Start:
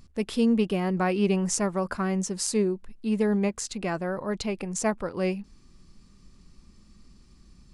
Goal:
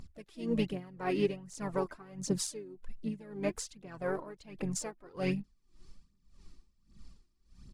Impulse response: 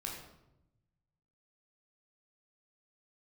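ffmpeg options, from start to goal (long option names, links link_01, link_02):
-filter_complex "[0:a]asplit=3[link_01][link_02][link_03];[link_02]asetrate=33038,aresample=44100,atempo=1.33484,volume=-9dB[link_04];[link_03]asetrate=58866,aresample=44100,atempo=0.749154,volume=-18dB[link_05];[link_01][link_04][link_05]amix=inputs=3:normalize=0,aphaser=in_gain=1:out_gain=1:delay=3.3:decay=0.54:speed=1.3:type=triangular,aeval=exprs='val(0)*pow(10,-21*(0.5-0.5*cos(2*PI*1.7*n/s))/20)':channel_layout=same,volume=-4.5dB"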